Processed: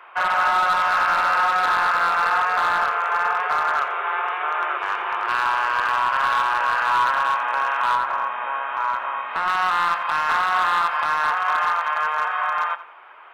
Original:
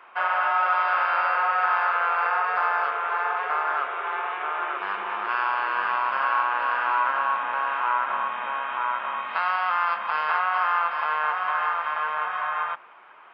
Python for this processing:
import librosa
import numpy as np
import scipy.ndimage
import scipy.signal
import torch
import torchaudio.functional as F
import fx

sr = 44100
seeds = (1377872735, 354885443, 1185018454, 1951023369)

y = scipy.signal.sosfilt(scipy.signal.butter(2, 400.0, 'highpass', fs=sr, output='sos'), x)
y = np.clip(y, -10.0 ** (-18.5 / 20.0), 10.0 ** (-18.5 / 20.0))
y = fx.high_shelf(y, sr, hz=2700.0, db=-9.5, at=(7.95, 9.48))
y = fx.echo_feedback(y, sr, ms=87, feedback_pct=25, wet_db=-15.0)
y = y * librosa.db_to_amplitude(4.5)